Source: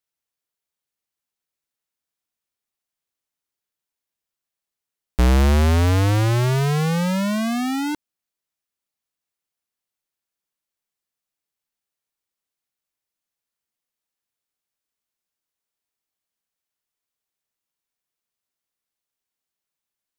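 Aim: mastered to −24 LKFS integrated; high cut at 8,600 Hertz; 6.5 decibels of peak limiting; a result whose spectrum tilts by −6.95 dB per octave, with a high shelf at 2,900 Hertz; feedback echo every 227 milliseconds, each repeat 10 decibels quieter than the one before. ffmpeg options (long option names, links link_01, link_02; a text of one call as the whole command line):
ffmpeg -i in.wav -af "lowpass=8600,highshelf=frequency=2900:gain=-8.5,alimiter=limit=-20dB:level=0:latency=1,aecho=1:1:227|454|681|908:0.316|0.101|0.0324|0.0104,volume=-2dB" out.wav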